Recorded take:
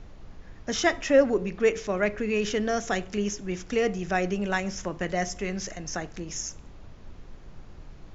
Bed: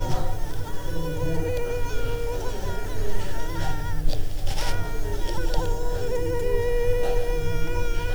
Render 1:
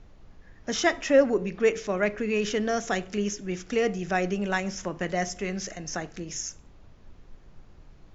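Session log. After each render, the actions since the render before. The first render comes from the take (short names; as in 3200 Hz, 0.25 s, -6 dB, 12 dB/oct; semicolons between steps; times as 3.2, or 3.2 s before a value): noise print and reduce 6 dB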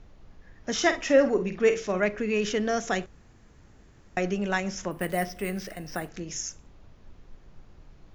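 0.76–2 doubler 49 ms -9.5 dB; 3.06–4.17 room tone; 4.91–6.09 careless resampling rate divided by 4×, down filtered, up hold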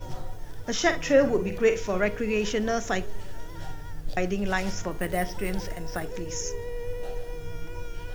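add bed -11 dB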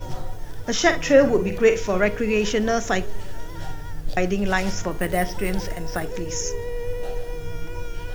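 gain +5 dB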